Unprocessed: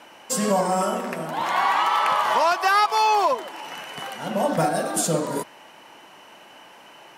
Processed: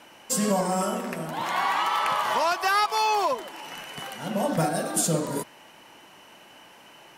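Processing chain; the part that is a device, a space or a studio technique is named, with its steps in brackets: smiley-face EQ (low shelf 110 Hz +8.5 dB; bell 830 Hz -3 dB 2 oct; high shelf 8800 Hz +4 dB); gain -2 dB

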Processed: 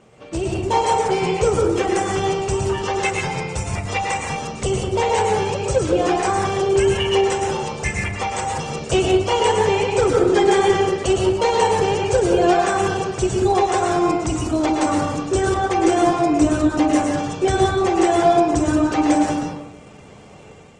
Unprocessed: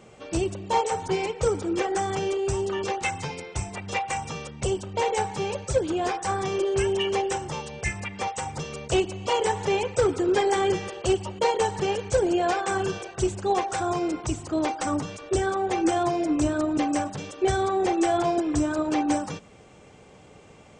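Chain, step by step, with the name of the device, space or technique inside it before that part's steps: speakerphone in a meeting room (reverb RT60 0.80 s, pre-delay 0.103 s, DRR -0.5 dB; AGC gain up to 4.5 dB; Opus 20 kbps 48000 Hz)

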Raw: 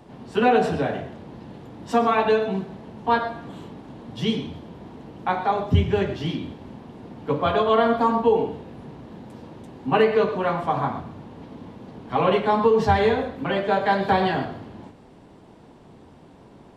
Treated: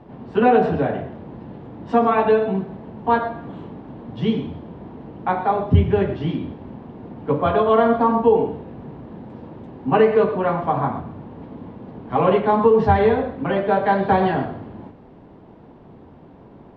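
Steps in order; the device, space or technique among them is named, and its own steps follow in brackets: phone in a pocket (LPF 3700 Hz 12 dB/oct; high shelf 2200 Hz -11 dB); gain +4 dB

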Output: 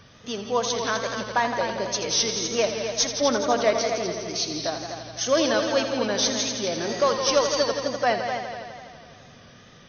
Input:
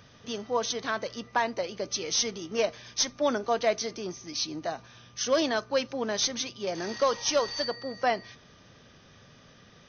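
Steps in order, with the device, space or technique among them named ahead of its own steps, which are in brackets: multi-head tape echo (multi-head echo 83 ms, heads all three, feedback 57%, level -10.5 dB; wow and flutter 47 cents); gain +3.5 dB

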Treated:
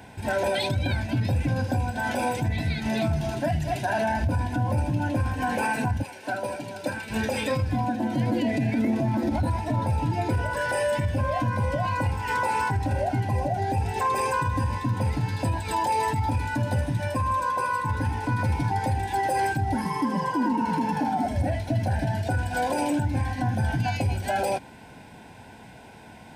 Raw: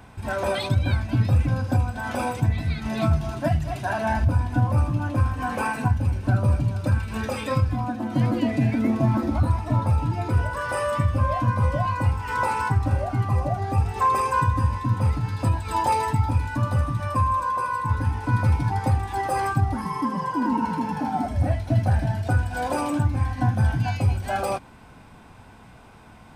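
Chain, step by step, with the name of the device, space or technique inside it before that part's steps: 6.02–7.09 HPF 690 Hz -> 260 Hz 12 dB/oct; PA system with an anti-feedback notch (HPF 150 Hz 6 dB/oct; Butterworth band-stop 1200 Hz, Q 2.8; limiter -21 dBFS, peak gain reduction 8.5 dB); gain +4 dB

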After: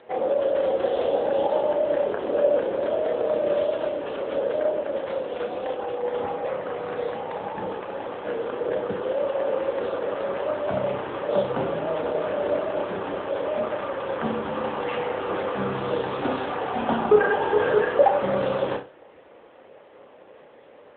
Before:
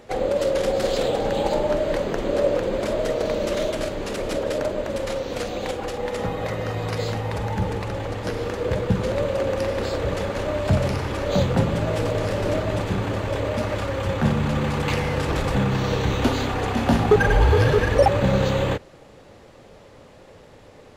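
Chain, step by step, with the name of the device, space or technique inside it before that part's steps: 6.32–7.29 bell 4900 Hz -3 dB 0.92 oct; 9.05–10.39 HPF 250 Hz -> 100 Hz 12 dB/oct; flutter echo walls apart 5.3 m, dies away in 0.32 s; dynamic EQ 2200 Hz, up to -6 dB, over -46 dBFS, Q 3.1; telephone (BPF 350–3100 Hz; AMR-NB 7.95 kbps 8000 Hz)

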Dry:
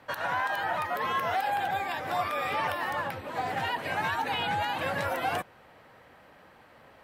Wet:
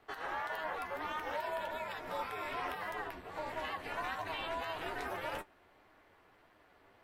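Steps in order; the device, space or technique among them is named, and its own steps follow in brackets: alien voice (ring modulator 160 Hz; flange 1.7 Hz, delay 9 ms, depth 2.3 ms, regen +51%); gain -2.5 dB

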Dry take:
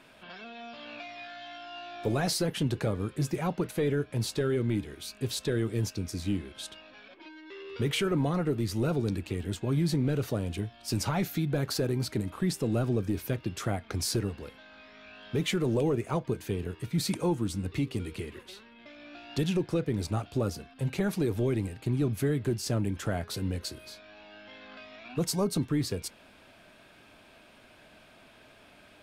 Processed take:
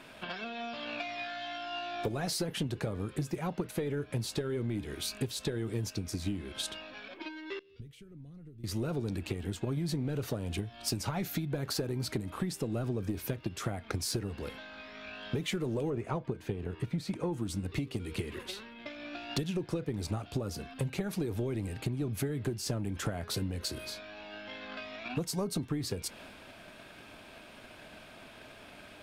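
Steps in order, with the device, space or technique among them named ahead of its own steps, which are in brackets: drum-bus smash (transient shaper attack +8 dB, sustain +3 dB; compressor 6:1, threshold -34 dBFS, peak gain reduction 15.5 dB; soft clip -26 dBFS, distortion -20 dB); 7.59–8.64 passive tone stack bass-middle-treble 10-0-1; 15.9–17.33 LPF 2500 Hz 6 dB/oct; gain +4 dB

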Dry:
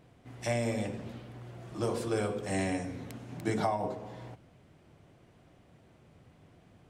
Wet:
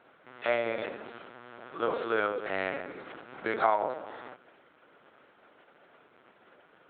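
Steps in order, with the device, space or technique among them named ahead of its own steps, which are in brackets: talking toy (LPC vocoder at 8 kHz pitch kept; HPF 400 Hz 12 dB/oct; bell 1400 Hz +11 dB 0.53 oct); gain +4.5 dB

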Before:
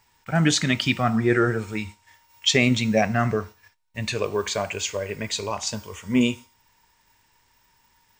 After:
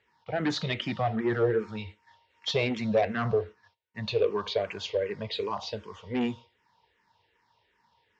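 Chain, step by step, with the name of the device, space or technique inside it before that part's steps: barber-pole phaser into a guitar amplifier (endless phaser -2.6 Hz; soft clip -19 dBFS, distortion -13 dB; speaker cabinet 100–4100 Hz, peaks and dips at 150 Hz -4 dB, 260 Hz -6 dB, 470 Hz +7 dB, 1400 Hz -4 dB, 2400 Hz -5 dB)

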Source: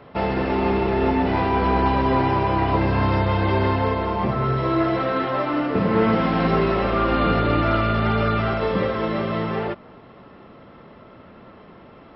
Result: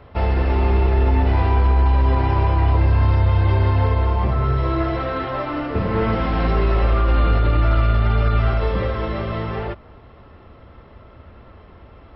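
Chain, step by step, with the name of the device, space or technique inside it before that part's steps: car stereo with a boomy subwoofer (resonant low shelf 110 Hz +14 dB, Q 1.5; limiter -7 dBFS, peak gain reduction 5.5 dB); gain -1.5 dB

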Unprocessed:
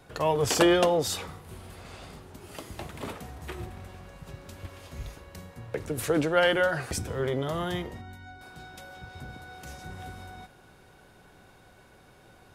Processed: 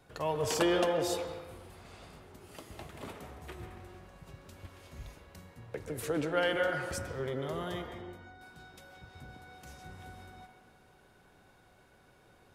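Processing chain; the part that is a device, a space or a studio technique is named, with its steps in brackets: filtered reverb send (on a send: HPF 210 Hz 24 dB/oct + LPF 3100 Hz 12 dB/oct + reverb RT60 1.3 s, pre-delay 0.12 s, DRR 5.5 dB); on the sum: gain -7.5 dB

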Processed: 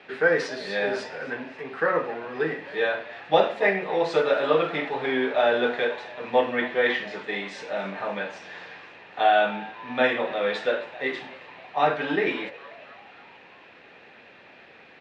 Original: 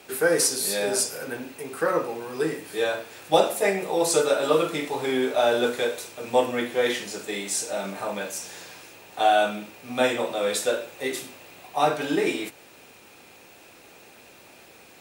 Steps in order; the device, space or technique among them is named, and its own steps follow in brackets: frequency-shifting delay pedal into a guitar cabinet (frequency-shifting echo 0.269 s, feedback 61%, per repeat +130 Hz, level -20 dB; speaker cabinet 88–3600 Hz, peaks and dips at 110 Hz -5 dB, 330 Hz -4 dB, 1800 Hz +8 dB)

